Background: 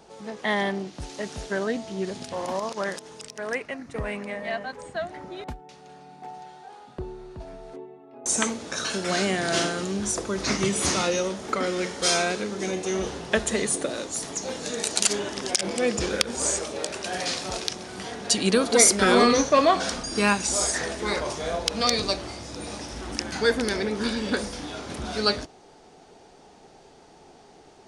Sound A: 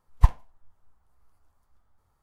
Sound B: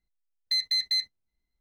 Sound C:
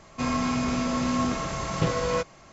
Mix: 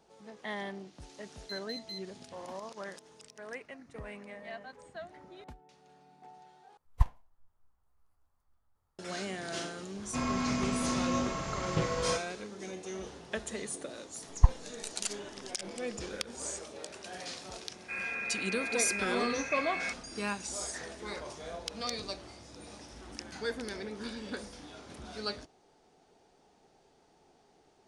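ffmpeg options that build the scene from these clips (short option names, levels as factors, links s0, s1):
-filter_complex "[1:a]asplit=2[s0][s1];[3:a]asplit=2[s2][s3];[0:a]volume=0.211[s4];[s1]lowpass=f=1000:p=1[s5];[s3]lowpass=f=2300:t=q:w=0.5098,lowpass=f=2300:t=q:w=0.6013,lowpass=f=2300:t=q:w=0.9,lowpass=f=2300:t=q:w=2.563,afreqshift=-2700[s6];[s4]asplit=2[s7][s8];[s7]atrim=end=6.774[s9];[s0]atrim=end=2.22,asetpts=PTS-STARTPTS,volume=0.355[s10];[s8]atrim=start=8.986[s11];[2:a]atrim=end=1.6,asetpts=PTS-STARTPTS,volume=0.133,afade=t=in:d=0.004:c=hsin,afade=t=out:st=1.596:d=0.004:c=hsin,adelay=980[s12];[s2]atrim=end=2.52,asetpts=PTS-STARTPTS,volume=0.501,afade=t=in:d=0.004:c=hsin,afade=t=out:st=2.516:d=0.004:c=hsin,adelay=9950[s13];[s5]atrim=end=2.22,asetpts=PTS-STARTPTS,volume=0.631,afade=t=in:d=0.004:c=hsin,afade=t=out:st=2.216:d=0.004:c=hsin,adelay=14200[s14];[s6]atrim=end=2.52,asetpts=PTS-STARTPTS,volume=0.282,afade=t=in:d=0.004:c=hsin,afade=t=out:st=2.516:d=0.004:c=hsin,adelay=17700[s15];[s9][s10]acrossfade=d=0.004:c1=hsin:c2=hsin[s16];[s16][s11]acrossfade=d=0.004:c1=hsin:c2=hsin[s17];[s17][s12][s13][s14][s15]amix=inputs=5:normalize=0"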